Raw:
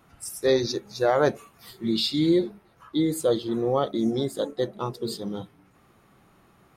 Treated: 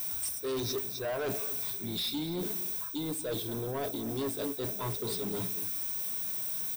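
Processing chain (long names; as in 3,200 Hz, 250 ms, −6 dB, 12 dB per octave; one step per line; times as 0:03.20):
background noise violet −39 dBFS
reversed playback
downward compressor 6 to 1, threshold −31 dBFS, peak gain reduction 14 dB
reversed playback
EQ curve with evenly spaced ripples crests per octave 1.6, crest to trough 13 dB
soft clipping −34 dBFS, distortion −9 dB
slap from a distant wall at 41 metres, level −14 dB
level +4 dB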